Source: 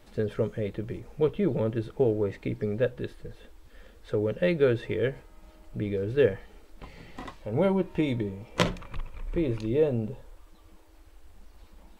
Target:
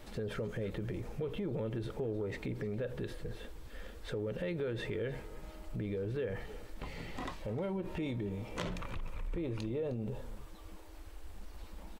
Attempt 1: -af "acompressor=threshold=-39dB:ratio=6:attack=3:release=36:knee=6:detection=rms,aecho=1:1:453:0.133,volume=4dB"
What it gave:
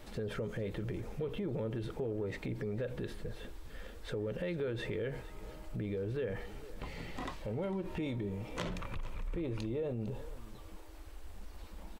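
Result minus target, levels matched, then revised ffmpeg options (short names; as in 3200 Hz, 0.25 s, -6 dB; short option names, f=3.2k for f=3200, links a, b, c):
echo 0.144 s late
-af "acompressor=threshold=-39dB:ratio=6:attack=3:release=36:knee=6:detection=rms,aecho=1:1:309:0.133,volume=4dB"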